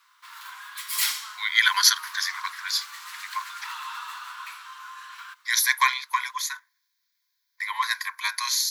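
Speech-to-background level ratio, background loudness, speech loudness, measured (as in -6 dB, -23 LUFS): 10.5 dB, -34.0 LUFS, -23.5 LUFS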